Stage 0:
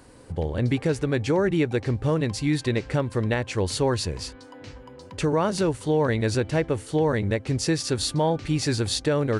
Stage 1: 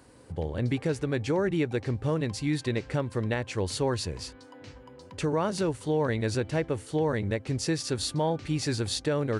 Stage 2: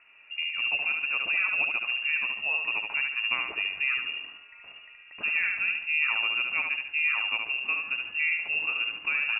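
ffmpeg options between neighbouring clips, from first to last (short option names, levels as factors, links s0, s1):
-af "highpass=51,volume=0.596"
-filter_complex "[0:a]asplit=2[s0][s1];[s1]aecho=0:1:72|144|216|288|360:0.631|0.252|0.101|0.0404|0.0162[s2];[s0][s2]amix=inputs=2:normalize=0,lowpass=f=2500:t=q:w=0.5098,lowpass=f=2500:t=q:w=0.6013,lowpass=f=2500:t=q:w=0.9,lowpass=f=2500:t=q:w=2.563,afreqshift=-2900,volume=0.794"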